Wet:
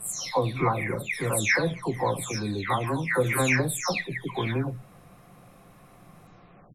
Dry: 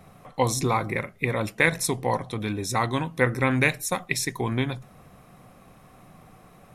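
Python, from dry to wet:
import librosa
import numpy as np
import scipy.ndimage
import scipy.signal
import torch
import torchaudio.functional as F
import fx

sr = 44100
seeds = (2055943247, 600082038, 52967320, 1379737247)

y = fx.spec_delay(x, sr, highs='early', ms=474)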